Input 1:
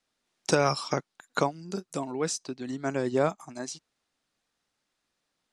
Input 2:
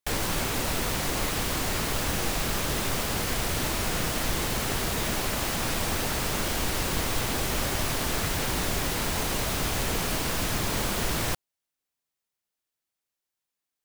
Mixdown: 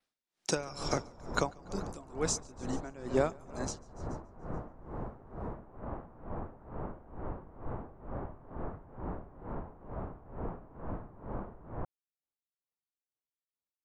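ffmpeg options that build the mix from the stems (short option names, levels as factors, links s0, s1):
-filter_complex "[0:a]adynamicequalizer=threshold=0.00251:dfrequency=6800:dqfactor=2.7:tfrequency=6800:tqfactor=2.7:attack=5:release=100:ratio=0.375:range=3.5:mode=boostabove:tftype=bell,volume=0.75,asplit=2[s0][s1];[s1]volume=0.237[s2];[1:a]lowpass=f=1100:w=0.5412,lowpass=f=1100:w=1.3066,adelay=500,volume=0.473[s3];[s2]aecho=0:1:143|286|429|572|715|858|1001|1144:1|0.54|0.292|0.157|0.085|0.0459|0.0248|0.0134[s4];[s0][s3][s4]amix=inputs=3:normalize=0,aeval=exprs='val(0)*pow(10,-18*(0.5-0.5*cos(2*PI*2.2*n/s))/20)':c=same"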